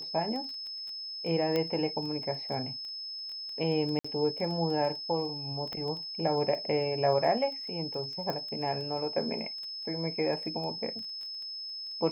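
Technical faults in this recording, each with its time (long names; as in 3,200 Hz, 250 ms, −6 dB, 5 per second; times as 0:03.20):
surface crackle 11 per second −37 dBFS
whistle 5,200 Hz −37 dBFS
0:01.56: click −17 dBFS
0:03.99–0:04.04: drop-out 55 ms
0:05.73: click −23 dBFS
0:08.30: click −21 dBFS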